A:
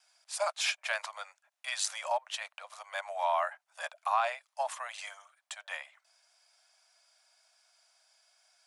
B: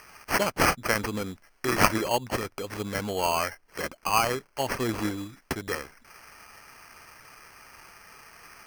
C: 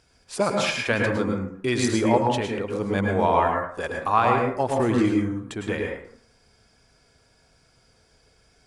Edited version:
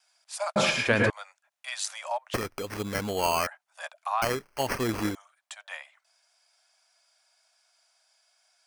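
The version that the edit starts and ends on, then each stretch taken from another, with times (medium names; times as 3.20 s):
A
0.56–1.10 s: from C
2.34–3.47 s: from B
4.22–5.15 s: from B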